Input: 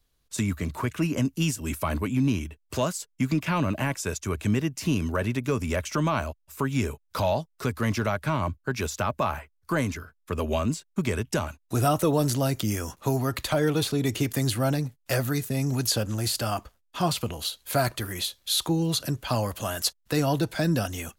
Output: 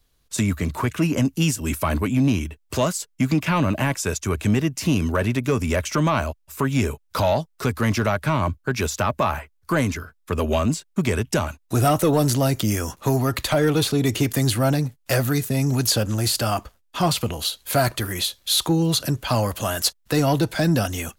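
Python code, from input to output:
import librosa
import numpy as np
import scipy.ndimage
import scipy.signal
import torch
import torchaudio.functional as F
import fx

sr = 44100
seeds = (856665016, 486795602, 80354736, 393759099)

y = 10.0 ** (-15.5 / 20.0) * np.tanh(x / 10.0 ** (-15.5 / 20.0))
y = y * librosa.db_to_amplitude(6.0)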